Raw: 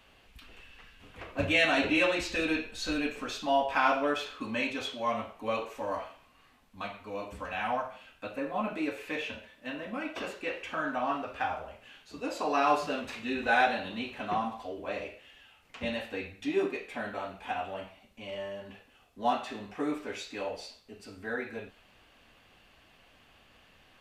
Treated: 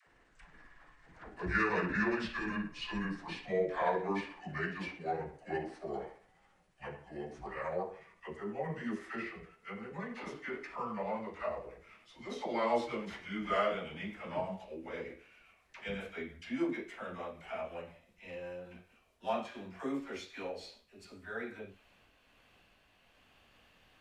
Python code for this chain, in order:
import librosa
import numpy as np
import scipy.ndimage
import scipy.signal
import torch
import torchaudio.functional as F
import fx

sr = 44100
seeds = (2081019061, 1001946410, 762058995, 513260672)

y = fx.pitch_glide(x, sr, semitones=-8.0, runs='ending unshifted')
y = fx.dispersion(y, sr, late='lows', ms=68.0, hz=560.0)
y = y * 10.0 ** (-4.5 / 20.0)